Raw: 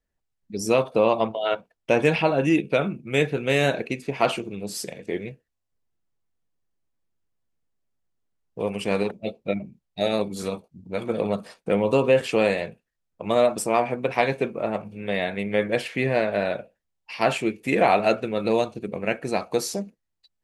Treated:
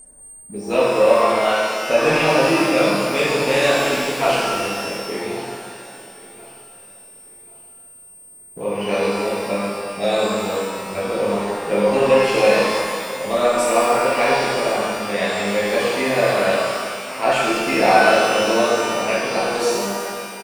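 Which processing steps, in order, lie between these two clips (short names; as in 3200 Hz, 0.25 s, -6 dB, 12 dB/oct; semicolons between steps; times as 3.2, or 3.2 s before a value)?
low-pass opened by the level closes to 680 Hz, open at -19 dBFS; low shelf 200 Hz -10 dB; upward compressor, threshold -30 dBFS; sample leveller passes 1; whine 8700 Hz -36 dBFS; on a send: feedback echo 1.085 s, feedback 32%, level -19 dB; on the sum: shimmer reverb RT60 2 s, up +12 st, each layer -8 dB, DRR -8 dB; gain -5.5 dB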